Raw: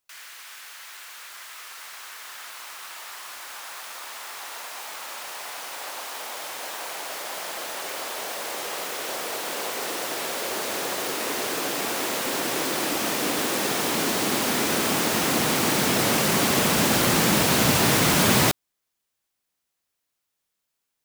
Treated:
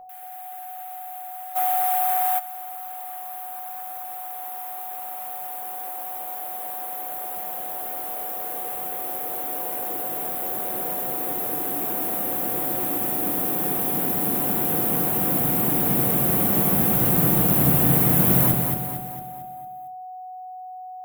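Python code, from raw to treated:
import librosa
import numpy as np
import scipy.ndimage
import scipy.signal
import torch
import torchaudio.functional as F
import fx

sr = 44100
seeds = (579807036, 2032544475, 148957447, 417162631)

p1 = fx.curve_eq(x, sr, hz=(160.0, 3400.0, 5300.0, 13000.0), db=(0, -16, -27, 7))
p2 = p1 + 10.0 ** (-40.0 / 20.0) * np.sin(2.0 * np.pi * 740.0 * np.arange(len(p1)) / sr)
p3 = p2 + fx.echo_feedback(p2, sr, ms=227, feedback_pct=48, wet_db=-5, dry=0)
p4 = fx.room_shoebox(p3, sr, seeds[0], volume_m3=140.0, walls='furnished', distance_m=0.69)
y = fx.env_flatten(p4, sr, amount_pct=70, at=(1.55, 2.38), fade=0.02)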